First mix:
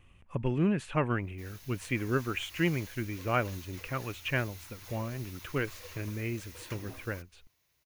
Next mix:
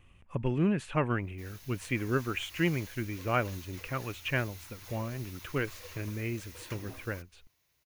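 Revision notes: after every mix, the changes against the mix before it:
none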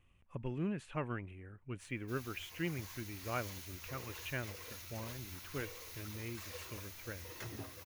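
speech -10.0 dB; background: entry +0.70 s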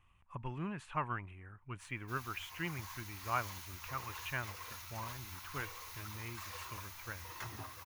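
master: add graphic EQ 250/500/1000 Hz -5/-8/+11 dB

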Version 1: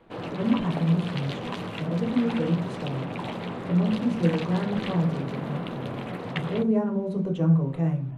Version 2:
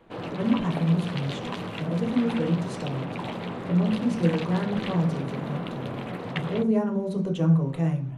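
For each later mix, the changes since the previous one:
speech: add high shelf 2800 Hz +10.5 dB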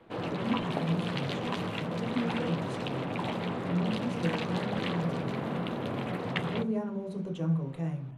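speech -8.5 dB

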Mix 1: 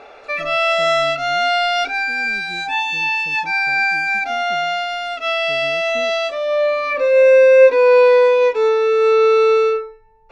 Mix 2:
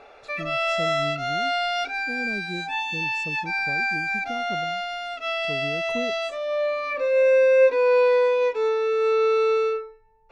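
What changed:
speech +5.5 dB; background -7.5 dB

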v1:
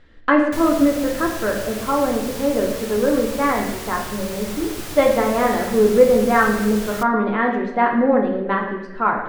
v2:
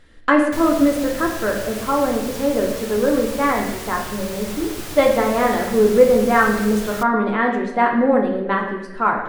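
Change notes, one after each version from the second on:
speech: remove air absorption 130 m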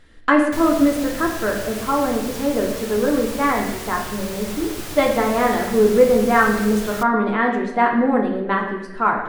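speech: add notch 540 Hz, Q 12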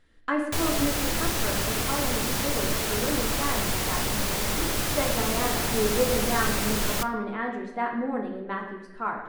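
speech -11.5 dB; background +5.0 dB

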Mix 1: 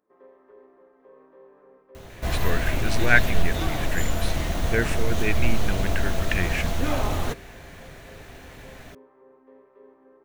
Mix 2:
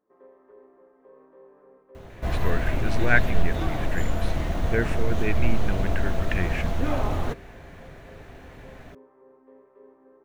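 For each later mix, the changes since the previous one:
master: add high shelf 2900 Hz -12 dB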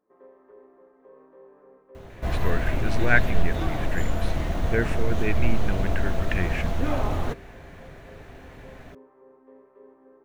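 reverb: on, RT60 1.8 s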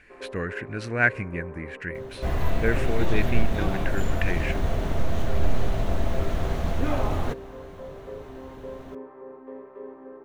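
speech: entry -2.10 s; first sound +11.0 dB

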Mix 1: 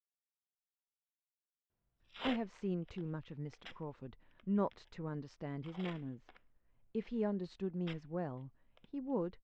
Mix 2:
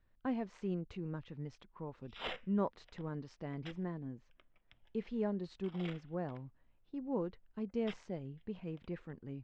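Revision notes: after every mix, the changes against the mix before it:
speech: entry -2.00 s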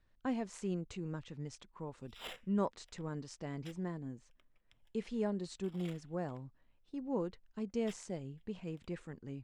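background -8.0 dB; master: remove air absorption 220 m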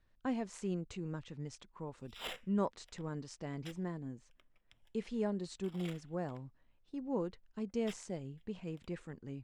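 background +3.5 dB

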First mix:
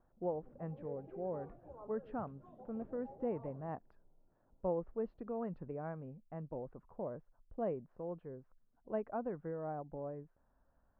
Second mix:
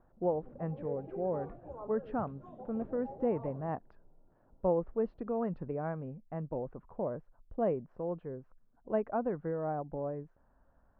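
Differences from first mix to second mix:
speech +6.5 dB; background +7.5 dB

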